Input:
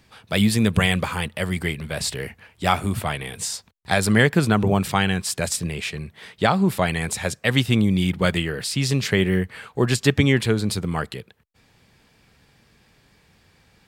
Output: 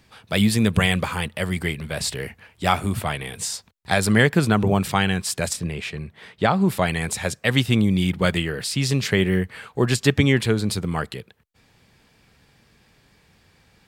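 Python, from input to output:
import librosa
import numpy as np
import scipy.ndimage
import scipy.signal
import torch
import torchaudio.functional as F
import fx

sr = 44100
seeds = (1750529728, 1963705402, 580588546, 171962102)

y = fx.high_shelf(x, sr, hz=4000.0, db=-8.0, at=(5.53, 6.61))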